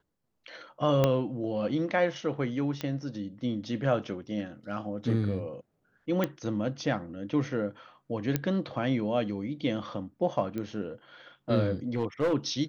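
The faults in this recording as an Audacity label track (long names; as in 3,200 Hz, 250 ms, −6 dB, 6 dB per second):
1.040000	1.040000	click −11 dBFS
2.810000	2.810000	click −18 dBFS
6.240000	6.240000	click −15 dBFS
8.360000	8.360000	click −12 dBFS
10.580000	10.580000	click −23 dBFS
11.950000	12.340000	clipping −22.5 dBFS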